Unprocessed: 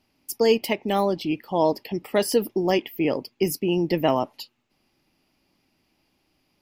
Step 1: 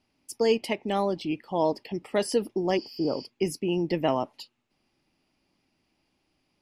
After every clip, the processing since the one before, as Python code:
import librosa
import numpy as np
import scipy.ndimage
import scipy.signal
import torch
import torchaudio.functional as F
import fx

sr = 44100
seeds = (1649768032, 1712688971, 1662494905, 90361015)

y = fx.spec_repair(x, sr, seeds[0], start_s=2.79, length_s=0.43, low_hz=1600.0, high_hz=7100.0, source='after')
y = scipy.signal.sosfilt(scipy.signal.cheby1(3, 1.0, 10000.0, 'lowpass', fs=sr, output='sos'), y)
y = F.gain(torch.from_numpy(y), -4.0).numpy()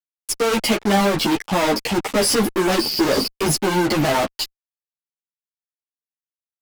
y = fx.rider(x, sr, range_db=4, speed_s=2.0)
y = fx.fuzz(y, sr, gain_db=48.0, gate_db=-45.0)
y = fx.ensemble(y, sr)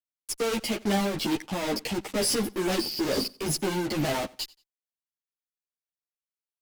y = fx.dynamic_eq(x, sr, hz=1100.0, q=0.85, threshold_db=-34.0, ratio=4.0, max_db=-5)
y = y * (1.0 - 0.33 / 2.0 + 0.33 / 2.0 * np.cos(2.0 * np.pi * 2.2 * (np.arange(len(y)) / sr)))
y = fx.echo_feedback(y, sr, ms=90, feedback_pct=26, wet_db=-23)
y = F.gain(torch.from_numpy(y), -6.5).numpy()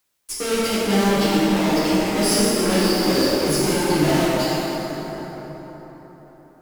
y = fx.rev_plate(x, sr, seeds[1], rt60_s=4.6, hf_ratio=0.5, predelay_ms=0, drr_db=-9.0)
y = fx.quant_dither(y, sr, seeds[2], bits=12, dither='triangular')